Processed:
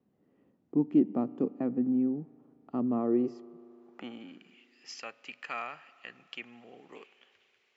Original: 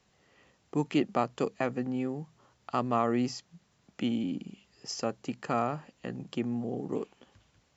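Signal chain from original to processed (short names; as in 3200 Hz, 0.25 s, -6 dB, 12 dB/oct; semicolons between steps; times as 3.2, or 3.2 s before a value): band-pass sweep 260 Hz -> 2400 Hz, 2.94–4.7; spring tank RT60 3.2 s, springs 37 ms, chirp 30 ms, DRR 19.5 dB; gain +6 dB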